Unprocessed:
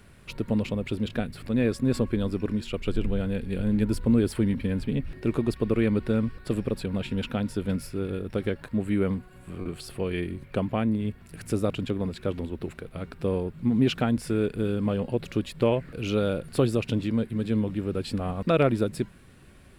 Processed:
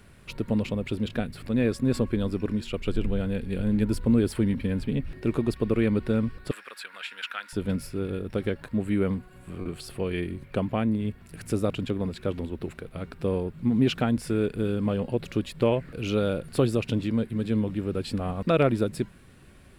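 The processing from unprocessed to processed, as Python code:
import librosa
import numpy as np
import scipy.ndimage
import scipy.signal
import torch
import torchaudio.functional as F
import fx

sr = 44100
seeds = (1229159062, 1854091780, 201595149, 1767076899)

y = fx.highpass_res(x, sr, hz=1500.0, q=2.5, at=(6.51, 7.53))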